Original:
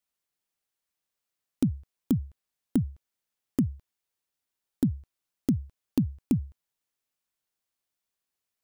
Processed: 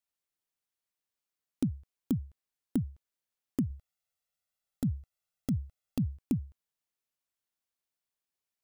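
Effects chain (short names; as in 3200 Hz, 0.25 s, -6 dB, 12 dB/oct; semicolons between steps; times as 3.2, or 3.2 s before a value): 3.7–6.17 comb 1.5 ms, depth 72%; gain -5 dB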